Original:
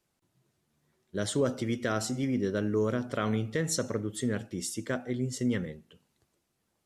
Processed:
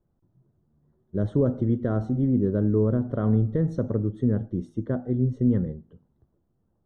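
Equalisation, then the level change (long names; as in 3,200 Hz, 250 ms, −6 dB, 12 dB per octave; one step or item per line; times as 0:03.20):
moving average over 18 samples
spectral tilt −3.5 dB per octave
0.0 dB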